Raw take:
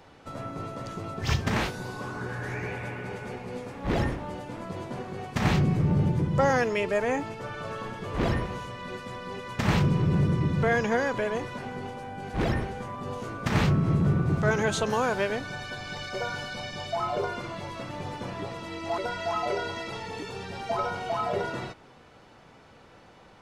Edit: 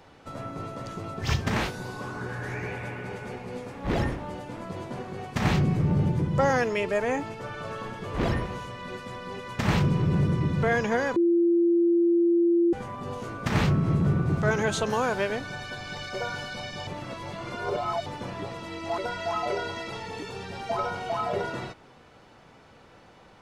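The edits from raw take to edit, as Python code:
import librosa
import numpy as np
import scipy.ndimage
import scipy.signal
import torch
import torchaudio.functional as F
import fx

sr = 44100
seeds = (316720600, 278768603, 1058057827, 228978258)

y = fx.edit(x, sr, fx.bleep(start_s=11.16, length_s=1.57, hz=342.0, db=-18.0),
    fx.reverse_span(start_s=16.87, length_s=1.19), tone=tone)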